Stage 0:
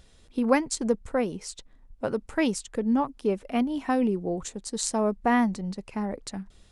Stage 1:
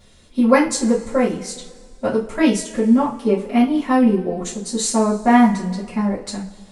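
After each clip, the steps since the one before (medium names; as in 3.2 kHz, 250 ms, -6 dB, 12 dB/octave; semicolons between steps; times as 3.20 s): two-slope reverb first 0.29 s, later 1.9 s, from -21 dB, DRR -9.5 dB; trim -1.5 dB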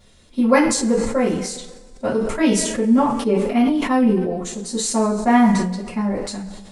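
decay stretcher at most 46 dB/s; trim -2 dB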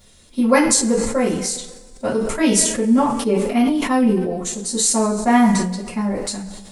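treble shelf 6.4 kHz +11.5 dB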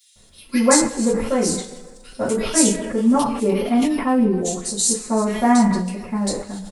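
bands offset in time highs, lows 160 ms, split 2.3 kHz; trim -1 dB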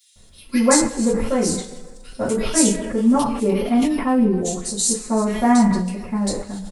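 bass shelf 120 Hz +7 dB; trim -1 dB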